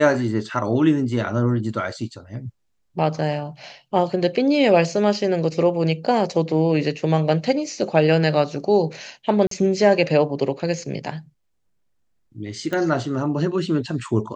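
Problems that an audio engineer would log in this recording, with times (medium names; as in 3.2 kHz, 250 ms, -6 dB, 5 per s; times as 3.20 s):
9.47–9.51 s: dropout 43 ms
12.73 s: pop -14 dBFS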